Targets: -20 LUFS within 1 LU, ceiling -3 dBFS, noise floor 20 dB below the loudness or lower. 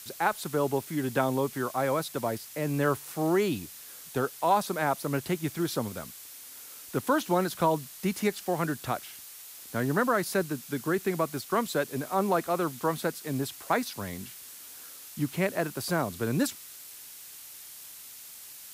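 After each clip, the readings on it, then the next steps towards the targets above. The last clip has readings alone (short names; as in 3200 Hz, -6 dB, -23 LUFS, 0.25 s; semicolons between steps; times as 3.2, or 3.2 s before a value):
noise floor -47 dBFS; noise floor target -50 dBFS; loudness -29.5 LUFS; peak -11.5 dBFS; loudness target -20.0 LUFS
-> denoiser 6 dB, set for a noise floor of -47 dBFS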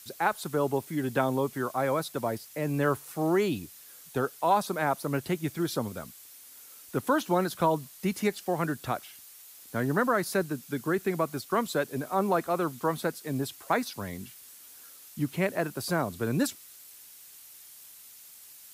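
noise floor -51 dBFS; loudness -29.5 LUFS; peak -11.5 dBFS; loudness target -20.0 LUFS
-> gain +9.5 dB; limiter -3 dBFS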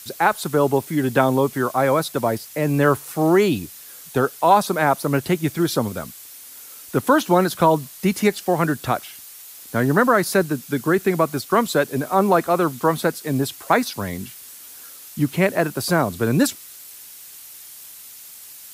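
loudness -20.0 LUFS; peak -3.0 dBFS; noise floor -41 dBFS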